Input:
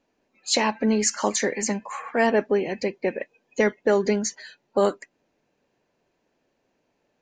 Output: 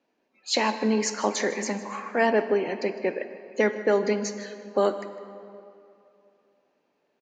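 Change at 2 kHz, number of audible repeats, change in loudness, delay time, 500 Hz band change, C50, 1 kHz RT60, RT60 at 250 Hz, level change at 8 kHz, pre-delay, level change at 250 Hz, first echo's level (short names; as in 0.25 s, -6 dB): -1.0 dB, 1, -2.0 dB, 0.156 s, -1.0 dB, 10.5 dB, 2.7 s, 2.9 s, -6.5 dB, 10 ms, -2.5 dB, -17.5 dB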